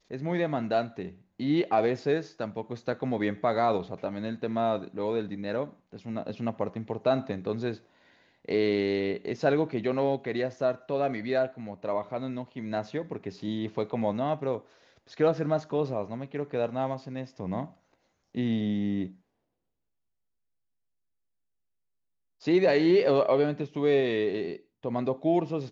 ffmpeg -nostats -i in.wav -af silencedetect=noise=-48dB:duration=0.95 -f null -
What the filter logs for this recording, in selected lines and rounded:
silence_start: 19.14
silence_end: 22.42 | silence_duration: 3.28